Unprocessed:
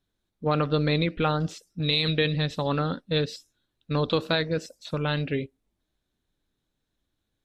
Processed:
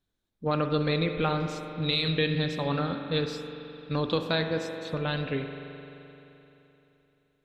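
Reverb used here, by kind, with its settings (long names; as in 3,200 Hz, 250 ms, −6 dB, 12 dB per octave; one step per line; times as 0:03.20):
spring reverb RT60 3.3 s, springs 43 ms, chirp 70 ms, DRR 5.5 dB
level −3 dB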